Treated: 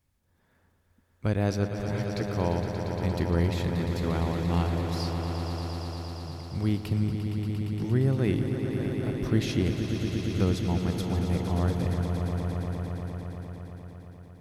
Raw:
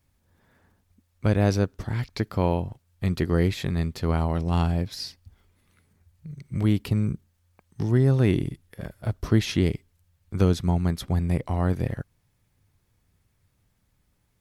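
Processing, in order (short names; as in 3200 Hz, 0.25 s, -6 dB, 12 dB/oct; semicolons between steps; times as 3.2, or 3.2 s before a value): swelling echo 0.116 s, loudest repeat 5, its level -9.5 dB; gain -5 dB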